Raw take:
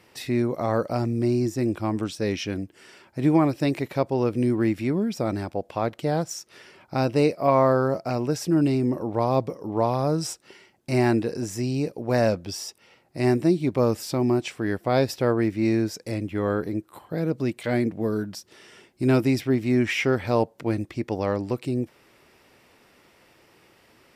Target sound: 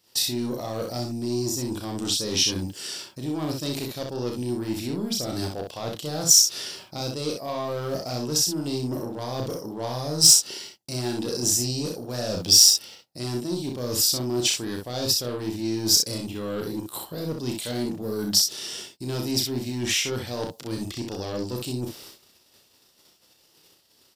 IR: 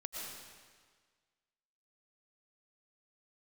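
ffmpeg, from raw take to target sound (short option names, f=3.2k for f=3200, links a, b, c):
-filter_complex "[0:a]agate=range=-22dB:threshold=-54dB:ratio=16:detection=peak,equalizer=f=10k:w=0.45:g=-10.5,areverse,acompressor=threshold=-31dB:ratio=12,areverse,asoftclip=type=tanh:threshold=-29dB,aexciter=amount=11.7:drive=4.2:freq=3.3k,asplit=2[a][b];[b]aecho=0:1:33|63:0.562|0.596[c];[a][c]amix=inputs=2:normalize=0,volume=5dB"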